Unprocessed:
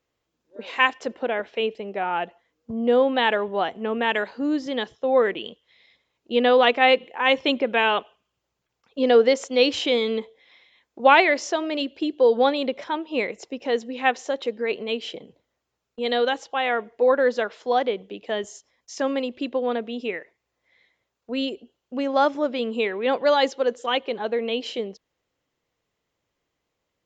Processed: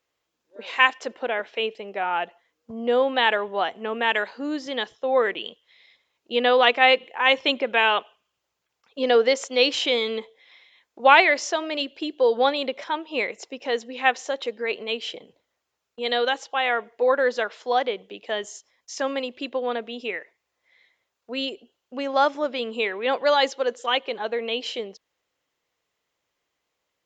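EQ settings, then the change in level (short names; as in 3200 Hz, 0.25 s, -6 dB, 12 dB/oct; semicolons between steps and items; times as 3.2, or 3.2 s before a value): low shelf 390 Hz -12 dB; +2.5 dB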